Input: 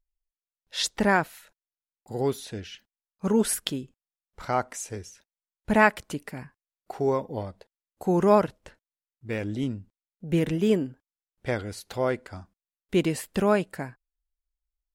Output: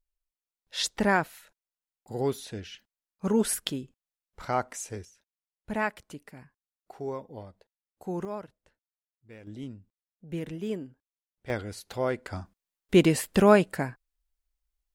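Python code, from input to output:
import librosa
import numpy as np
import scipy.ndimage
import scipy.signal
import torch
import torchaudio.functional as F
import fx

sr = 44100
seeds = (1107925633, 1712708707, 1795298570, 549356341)

y = fx.gain(x, sr, db=fx.steps((0.0, -2.0), (5.05, -10.0), (8.25, -18.0), (9.47, -10.5), (11.5, -2.5), (12.26, 4.0)))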